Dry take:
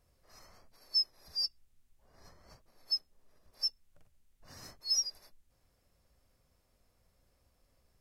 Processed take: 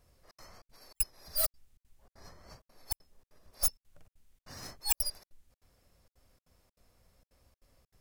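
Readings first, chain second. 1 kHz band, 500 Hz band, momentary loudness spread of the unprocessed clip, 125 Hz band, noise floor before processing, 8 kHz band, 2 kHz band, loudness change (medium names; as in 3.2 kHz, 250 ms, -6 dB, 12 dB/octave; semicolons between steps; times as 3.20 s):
+12.0 dB, +14.0 dB, 11 LU, +10.5 dB, -74 dBFS, +5.5 dB, no reading, +0.5 dB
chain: tracing distortion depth 0.26 ms; trance gate "xxxx.xxx.xxx.xx" 195 bpm -60 dB; trim +5 dB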